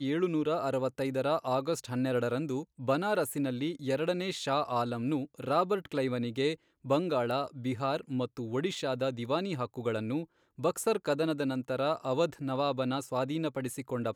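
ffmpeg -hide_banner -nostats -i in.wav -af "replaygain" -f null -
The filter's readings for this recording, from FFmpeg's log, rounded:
track_gain = +12.3 dB
track_peak = 0.123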